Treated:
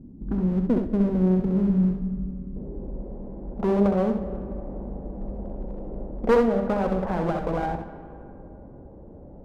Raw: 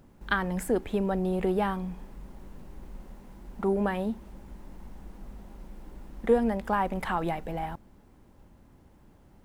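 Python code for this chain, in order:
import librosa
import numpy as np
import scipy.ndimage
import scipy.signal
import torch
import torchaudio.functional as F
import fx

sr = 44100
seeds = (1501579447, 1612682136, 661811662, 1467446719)

p1 = fx.spec_box(x, sr, start_s=1.35, length_s=1.21, low_hz=290.0, high_hz=2100.0, gain_db=-26)
p2 = fx.env_lowpass_down(p1, sr, base_hz=700.0, full_db=-24.0)
p3 = fx.dynamic_eq(p2, sr, hz=390.0, q=1.0, threshold_db=-39.0, ratio=4.0, max_db=-6)
p4 = fx.rider(p3, sr, range_db=4, speed_s=0.5)
p5 = p3 + (p4 * 10.0 ** (0.0 / 20.0))
p6 = fx.filter_sweep_lowpass(p5, sr, from_hz=260.0, to_hz=550.0, start_s=0.66, end_s=3.5, q=2.5)
p7 = fx.clip_asym(p6, sr, top_db=-28.5, bottom_db=-10.5)
p8 = fx.room_early_taps(p7, sr, ms=(65, 80), db=(-6.0, -11.5))
p9 = fx.rev_freeverb(p8, sr, rt60_s=2.9, hf_ratio=0.4, predelay_ms=70, drr_db=12.5)
y = p9 * 10.0 ** (1.5 / 20.0)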